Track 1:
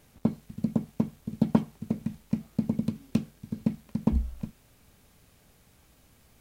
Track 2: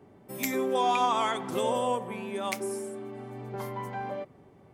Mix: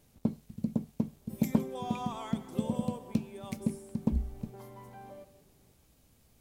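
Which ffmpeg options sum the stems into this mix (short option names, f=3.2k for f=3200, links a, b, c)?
-filter_complex "[0:a]volume=-4dB[a];[1:a]adelay=1000,volume=-11dB,asplit=2[b][c];[c]volume=-15dB,aecho=0:1:165:1[d];[a][b][d]amix=inputs=3:normalize=0,equalizer=f=1.6k:w=0.67:g=-6"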